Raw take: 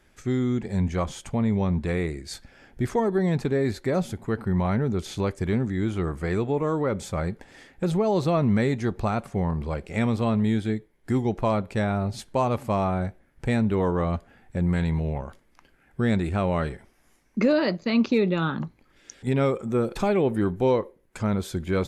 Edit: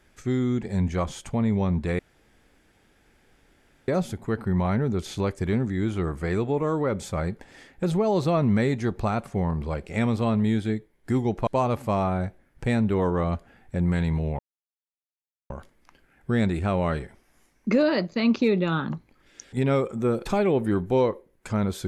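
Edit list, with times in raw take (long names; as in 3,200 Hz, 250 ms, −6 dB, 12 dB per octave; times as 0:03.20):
0:01.99–0:03.88: fill with room tone
0:11.47–0:12.28: remove
0:15.20: splice in silence 1.11 s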